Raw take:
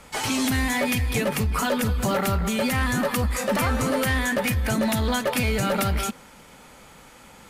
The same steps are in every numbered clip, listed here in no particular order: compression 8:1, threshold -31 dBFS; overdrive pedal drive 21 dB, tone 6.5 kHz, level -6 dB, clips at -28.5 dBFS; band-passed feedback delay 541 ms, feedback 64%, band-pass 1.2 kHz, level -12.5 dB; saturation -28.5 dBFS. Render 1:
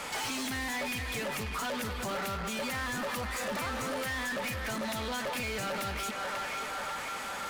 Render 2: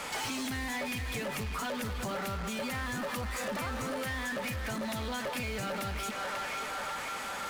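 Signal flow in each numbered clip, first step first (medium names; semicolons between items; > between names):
band-passed feedback delay > compression > overdrive pedal > saturation; band-passed feedback delay > overdrive pedal > compression > saturation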